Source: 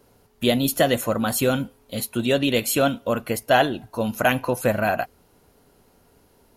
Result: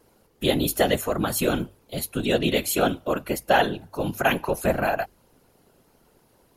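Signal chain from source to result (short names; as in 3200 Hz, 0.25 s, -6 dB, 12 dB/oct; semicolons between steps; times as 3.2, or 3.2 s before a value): whisperiser; notches 50/100 Hz; gain -2 dB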